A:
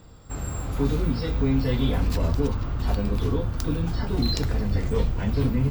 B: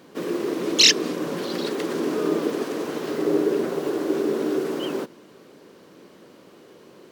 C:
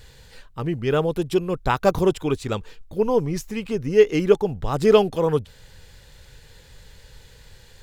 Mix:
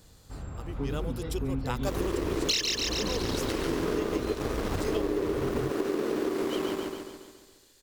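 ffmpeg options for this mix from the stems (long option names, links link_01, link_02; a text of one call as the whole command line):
ffmpeg -i stem1.wav -i stem2.wav -i stem3.wav -filter_complex "[0:a]aemphasis=mode=reproduction:type=75fm,volume=-9dB[link_01];[1:a]aeval=exprs='sgn(val(0))*max(abs(val(0))-0.0266,0)':channel_layout=same,adelay=1700,volume=1.5dB,asplit=2[link_02][link_03];[link_03]volume=-4dB[link_04];[2:a]bass=frequency=250:gain=-8,treble=frequency=4000:gain=13,dynaudnorm=framelen=240:gausssize=9:maxgain=10dB,volume=-15.5dB,asplit=2[link_05][link_06];[link_06]volume=-22dB[link_07];[link_04][link_07]amix=inputs=2:normalize=0,aecho=0:1:140|280|420|560|700|840|980|1120:1|0.53|0.281|0.149|0.0789|0.0418|0.0222|0.0117[link_08];[link_01][link_02][link_05][link_08]amix=inputs=4:normalize=0,acompressor=threshold=-25dB:ratio=8" out.wav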